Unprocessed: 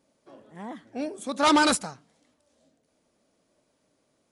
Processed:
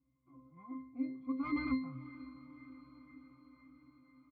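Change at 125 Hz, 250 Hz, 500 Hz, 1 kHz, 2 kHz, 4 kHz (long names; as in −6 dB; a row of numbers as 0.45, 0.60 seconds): −4.0, −8.0, −25.5, −22.0, −17.5, −29.5 decibels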